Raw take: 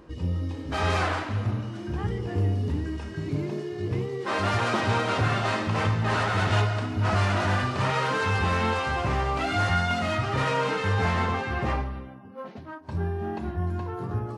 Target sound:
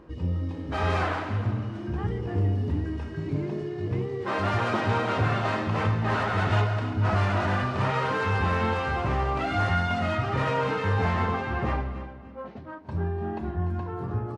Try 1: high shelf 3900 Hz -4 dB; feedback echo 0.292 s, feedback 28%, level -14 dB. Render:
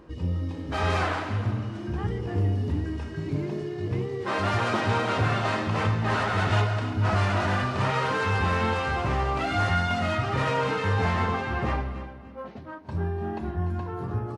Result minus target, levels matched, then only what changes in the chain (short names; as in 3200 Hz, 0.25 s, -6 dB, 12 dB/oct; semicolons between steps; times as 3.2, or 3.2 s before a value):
8000 Hz band +5.0 dB
change: high shelf 3900 Hz -11.5 dB